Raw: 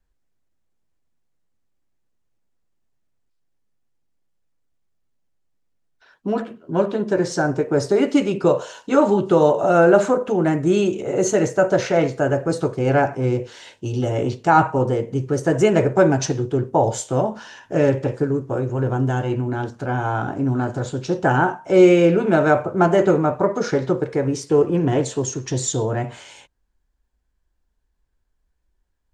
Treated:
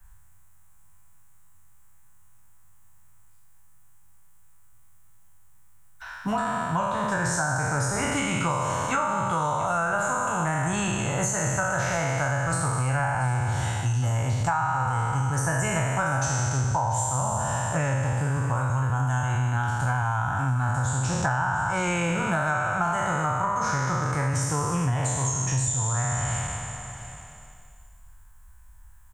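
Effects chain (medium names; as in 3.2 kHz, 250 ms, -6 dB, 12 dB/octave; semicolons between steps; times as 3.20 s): spectral sustain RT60 1.81 s; FFT filter 110 Hz 0 dB, 390 Hz -29 dB, 1 kHz -1 dB, 4.8 kHz -15 dB, 8 kHz +3 dB; compression 6:1, threshold -32 dBFS, peak gain reduction 18 dB; delay 685 ms -18 dB; three bands compressed up and down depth 40%; trim +9 dB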